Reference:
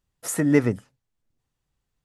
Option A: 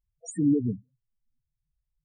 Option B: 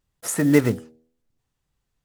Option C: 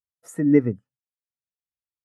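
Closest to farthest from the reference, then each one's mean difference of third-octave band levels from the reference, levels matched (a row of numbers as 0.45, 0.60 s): B, C, A; 3.5, 9.5, 13.0 dB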